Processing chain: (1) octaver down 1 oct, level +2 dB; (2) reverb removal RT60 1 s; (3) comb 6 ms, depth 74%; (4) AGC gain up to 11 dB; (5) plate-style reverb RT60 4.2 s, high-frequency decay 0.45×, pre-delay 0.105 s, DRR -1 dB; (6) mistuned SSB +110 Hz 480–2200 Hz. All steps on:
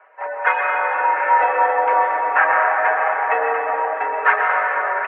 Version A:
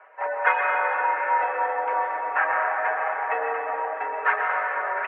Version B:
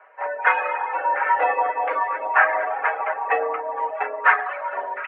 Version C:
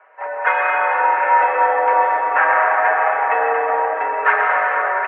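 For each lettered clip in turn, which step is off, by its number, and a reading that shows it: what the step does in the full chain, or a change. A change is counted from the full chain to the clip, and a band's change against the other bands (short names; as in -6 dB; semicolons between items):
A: 4, crest factor change +2.0 dB; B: 5, momentary loudness spread change +3 LU; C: 2, crest factor change -2.0 dB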